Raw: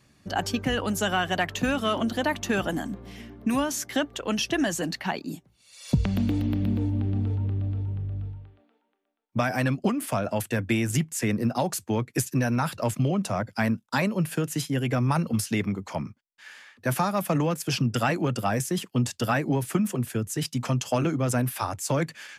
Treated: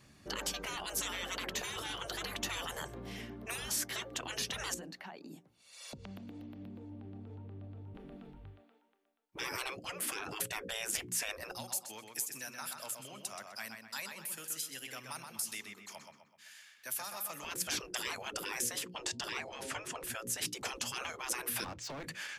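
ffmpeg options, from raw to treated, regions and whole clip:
ffmpeg -i in.wav -filter_complex "[0:a]asettb=1/sr,asplit=3[link_01][link_02][link_03];[link_01]atrim=end=4.744[link_04];[link_02]atrim=start=4.74:end=7.95,asetpts=PTS-STARTPTS,afade=type=in:duration=0.004:curve=qsin,afade=type=out:start_time=3.206:duration=0.004:curve=qsin,highpass=frequency=590:poles=1,tiltshelf=frequency=1200:gain=5.5,acompressor=threshold=-44dB:ratio=8:attack=3.2:release=140:knee=1:detection=peak[link_05];[link_03]atrim=start=7.946[link_06];[link_04][link_05]acrossfade=duration=0.004:curve1=hsin:curve2=qsin[link_07];[link_07][link_06]acrossfade=duration=0.004:curve1=qsin:curve2=hsin,asettb=1/sr,asplit=3[link_08][link_09][link_10];[link_08]atrim=end=11.514[link_11];[link_09]atrim=start=11.51:end=17.45,asetpts=PTS-STARTPTS,afade=type=in:duration=0.004:curve=qsin,afade=type=out:start_time=5.936:duration=0.004:curve=qsin,aderivative,acompressor=threshold=-40dB:ratio=1.5:attack=3.2:release=140:knee=1:detection=peak,asplit=2[link_12][link_13];[link_13]adelay=127,lowpass=frequency=3600:poles=1,volume=-4.5dB,asplit=2[link_14][link_15];[link_15]adelay=127,lowpass=frequency=3600:poles=1,volume=0.47,asplit=2[link_16][link_17];[link_17]adelay=127,lowpass=frequency=3600:poles=1,volume=0.47,asplit=2[link_18][link_19];[link_19]adelay=127,lowpass=frequency=3600:poles=1,volume=0.47,asplit=2[link_20][link_21];[link_21]adelay=127,lowpass=frequency=3600:poles=1,volume=0.47,asplit=2[link_22][link_23];[link_23]adelay=127,lowpass=frequency=3600:poles=1,volume=0.47[link_24];[link_12][link_14][link_16][link_18][link_20][link_22][link_24]amix=inputs=7:normalize=0,atrim=end_sample=261954[link_25];[link_10]atrim=start=17.446[link_26];[link_11][link_25]acrossfade=duration=0.004:curve1=hsin:curve2=qsin[link_27];[link_27][link_26]acrossfade=duration=0.004:curve1=qsin:curve2=hsin,asettb=1/sr,asplit=3[link_28][link_29][link_30];[link_28]atrim=end=18.864[link_31];[link_29]atrim=start=18.86:end=20.04,asetpts=PTS-STARTPTS,afade=type=in:duration=0.004:curve=qsin,afade=type=out:start_time=1.176:duration=0.004:curve=qsin,lowpass=6800,bandreject=frequency=131.7:width_type=h:width=4,bandreject=frequency=263.4:width_type=h:width=4,bandreject=frequency=395.1:width_type=h:width=4,bandreject=frequency=526.8:width_type=h:width=4,bandreject=frequency=658.5:width_type=h:width=4,bandreject=frequency=790.2:width_type=h:width=4,bandreject=frequency=921.9:width_type=h:width=4[link_32];[link_30]atrim=start=20.036[link_33];[link_31][link_32]acrossfade=duration=0.004:curve1=hsin:curve2=qsin[link_34];[link_34][link_33]acrossfade=duration=0.004:curve1=qsin:curve2=hsin,asettb=1/sr,asplit=3[link_35][link_36][link_37];[link_35]atrim=end=21.644[link_38];[link_36]atrim=start=21.64:end=22.04,asetpts=PTS-STARTPTS,afade=type=in:duration=0.004:curve=qsin,afade=type=out:start_time=0.396:duration=0.004:curve=qsin,lowpass=frequency=5300:width=0.5412,lowpass=frequency=5300:width=1.3066,acompressor=threshold=-32dB:ratio=10:attack=3.2:release=140:knee=1:detection=peak,asoftclip=type=hard:threshold=-39dB[link_39];[link_37]atrim=start=22.036[link_40];[link_38][link_39]acrossfade=duration=0.004:curve1=hsin:curve2=qsin[link_41];[link_41][link_40]acrossfade=duration=0.004:curve1=qsin:curve2=hsin,bandreject=frequency=60:width_type=h:width=6,bandreject=frequency=120:width_type=h:width=6,bandreject=frequency=180:width_type=h:width=6,bandreject=frequency=240:width_type=h:width=6,bandreject=frequency=300:width_type=h:width=6,bandreject=frequency=360:width_type=h:width=6,bandreject=frequency=420:width_type=h:width=6,bandreject=frequency=480:width_type=h:width=6,bandreject=frequency=540:width_type=h:width=6,afftfilt=real='re*lt(hypot(re,im),0.0631)':imag='im*lt(hypot(re,im),0.0631)':win_size=1024:overlap=0.75" out.wav

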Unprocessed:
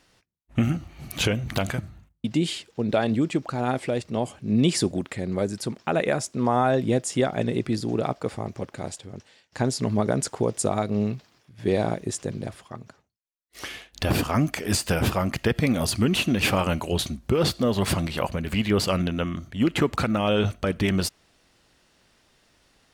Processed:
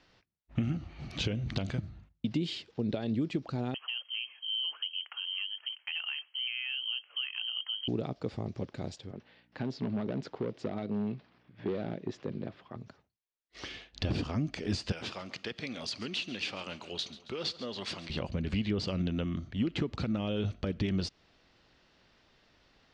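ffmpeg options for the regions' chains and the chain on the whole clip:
ffmpeg -i in.wav -filter_complex "[0:a]asettb=1/sr,asplit=3[link_01][link_02][link_03];[link_01]atrim=end=3.744[link_04];[link_02]atrim=start=3.74:end=7.88,asetpts=PTS-STARTPTS,afade=type=in:duration=0.004:curve=qsin,afade=type=out:start_time=4.136:duration=0.004:curve=qsin,acompressor=threshold=-31dB:ratio=1.5:attack=3.2:release=140:knee=1:detection=peak,lowpass=frequency=2800:width_type=q:width=0.5098,lowpass=frequency=2800:width_type=q:width=0.6013,lowpass=frequency=2800:width_type=q:width=0.9,lowpass=frequency=2800:width_type=q:width=2.563,afreqshift=-3300,highpass=1000[link_05];[link_03]atrim=start=7.876[link_06];[link_04][link_05]acrossfade=duration=0.004:curve1=hsin:curve2=qsin[link_07];[link_07][link_06]acrossfade=duration=0.004:curve1=qsin:curve2=hsin,asettb=1/sr,asplit=3[link_08][link_09][link_10];[link_08]atrim=end=9.114[link_11];[link_09]atrim=start=9.11:end=12.76,asetpts=PTS-STARTPTS,afade=type=in:duration=0.004:curve=qsin,afade=type=out:start_time=3.646:duration=0.004:curve=qsin,aeval=exprs='val(0)+0.00112*(sin(2*PI*60*n/s)+sin(2*PI*2*60*n/s)/2+sin(2*PI*3*60*n/s)/3+sin(2*PI*4*60*n/s)/4+sin(2*PI*5*60*n/s)/5)':channel_layout=same,asoftclip=type=hard:threshold=-21.5dB,highpass=170,lowpass=2900[link_12];[link_10]atrim=start=12.756[link_13];[link_11][link_12]acrossfade=duration=0.004:curve1=hsin:curve2=qsin[link_14];[link_14][link_13]acrossfade=duration=0.004:curve1=qsin:curve2=hsin,asettb=1/sr,asplit=3[link_15][link_16][link_17];[link_15]atrim=end=14.924[link_18];[link_16]atrim=start=14.92:end=18.1,asetpts=PTS-STARTPTS,afade=type=in:duration=0.004:curve=qsin,afade=type=out:start_time=3.176:duration=0.004:curve=qsin,highpass=frequency=1400:poles=1,aecho=1:1:137|274|411|548:0.133|0.0653|0.032|0.0157,atrim=end_sample=140238[link_19];[link_17]atrim=start=18.096[link_20];[link_18][link_19]acrossfade=duration=0.004:curve1=hsin:curve2=qsin[link_21];[link_21][link_20]acrossfade=duration=0.004:curve1=qsin:curve2=hsin,acompressor=threshold=-24dB:ratio=6,lowpass=frequency=5100:width=0.5412,lowpass=frequency=5100:width=1.3066,acrossover=split=470|3000[link_22][link_23][link_24];[link_23]acompressor=threshold=-50dB:ratio=2[link_25];[link_22][link_25][link_24]amix=inputs=3:normalize=0,volume=-2.5dB" out.wav

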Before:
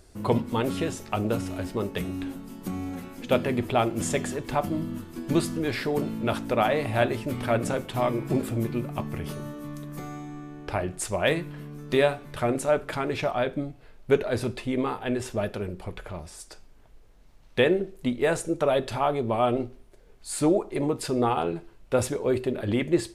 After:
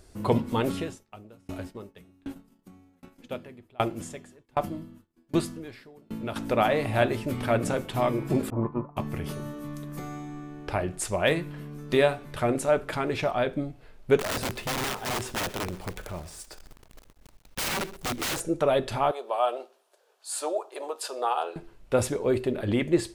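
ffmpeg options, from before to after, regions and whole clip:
ffmpeg -i in.wav -filter_complex "[0:a]asettb=1/sr,asplit=3[link_01][link_02][link_03];[link_01]atrim=end=0.724[link_04];[link_02]atrim=start=0.72:end=6.36,asetpts=PTS-STARTPTS,afade=type=in:duration=0.004:curve=qsin,afade=type=out:start_time=5.636:duration=0.004:curve=qsin,agate=range=-33dB:threshold=-34dB:ratio=3:release=100:detection=peak,aeval=exprs='val(0)*pow(10,-32*if(lt(mod(1.3*n/s,1),2*abs(1.3)/1000),1-mod(1.3*n/s,1)/(2*abs(1.3)/1000),(mod(1.3*n/s,1)-2*abs(1.3)/1000)/(1-2*abs(1.3)/1000))/20)':channel_layout=same[link_05];[link_03]atrim=start=6.356[link_06];[link_04][link_05]acrossfade=duration=0.004:curve1=hsin:curve2=qsin[link_07];[link_07][link_06]acrossfade=duration=0.004:curve1=qsin:curve2=hsin,asettb=1/sr,asplit=3[link_08][link_09][link_10];[link_08]atrim=end=8.504[link_11];[link_09]atrim=start=8.5:end=8.97,asetpts=PTS-STARTPTS,afade=type=in:duration=0.004:curve=qsin,afade=type=out:start_time=0.466:duration=0.004:curve=qsin,agate=range=-33dB:threshold=-25dB:ratio=3:release=100:detection=peak,lowpass=frequency=1000:width_type=q:width=8.6[link_12];[link_10]atrim=start=8.966[link_13];[link_11][link_12]acrossfade=duration=0.004:curve1=hsin:curve2=qsin[link_14];[link_14][link_13]acrossfade=duration=0.004:curve1=qsin:curve2=hsin,asettb=1/sr,asplit=3[link_15][link_16][link_17];[link_15]atrim=end=14.194[link_18];[link_16]atrim=start=14.19:end=18.4,asetpts=PTS-STARTPTS,afade=type=in:duration=0.004:curve=qsin,afade=type=out:start_time=4.206:duration=0.004:curve=qsin,aeval=exprs='(mod(16.8*val(0)+1,2)-1)/16.8':channel_layout=same,acrusher=bits=9:dc=4:mix=0:aa=0.000001,aecho=1:1:125:0.119,atrim=end_sample=185661[link_19];[link_17]atrim=start=18.396[link_20];[link_18][link_19]acrossfade=duration=0.004:curve1=hsin:curve2=qsin[link_21];[link_21][link_20]acrossfade=duration=0.004:curve1=qsin:curve2=hsin,asettb=1/sr,asplit=3[link_22][link_23][link_24];[link_22]atrim=end=19.114[link_25];[link_23]atrim=start=19.11:end=21.56,asetpts=PTS-STARTPTS,afade=type=in:duration=0.004:curve=qsin,afade=type=out:start_time=2.446:duration=0.004:curve=qsin,highpass=frequency=540:width=0.5412,highpass=frequency=540:width=1.3066,equalizer=frequency=2100:width=4.6:gain=-11[link_26];[link_24]atrim=start=21.556[link_27];[link_25][link_26]acrossfade=duration=0.004:curve1=hsin:curve2=qsin[link_28];[link_28][link_27]acrossfade=duration=0.004:curve1=qsin:curve2=hsin" out.wav

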